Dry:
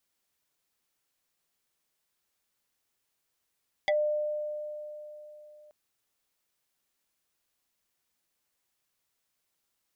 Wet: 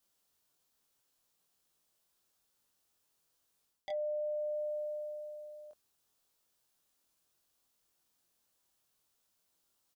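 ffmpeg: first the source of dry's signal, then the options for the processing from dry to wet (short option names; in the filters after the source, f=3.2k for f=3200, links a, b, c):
-f lavfi -i "aevalsrc='0.0794*pow(10,-3*t/3.6)*sin(2*PI*601*t+2.4*pow(10,-3*t/0.1)*sin(2*PI*2.3*601*t))':d=1.83:s=44100"
-filter_complex "[0:a]equalizer=f=2.1k:t=o:w=0.69:g=-7,areverse,acompressor=threshold=-38dB:ratio=12,areverse,asplit=2[a][b];[b]adelay=23,volume=-2dB[c];[a][c]amix=inputs=2:normalize=0"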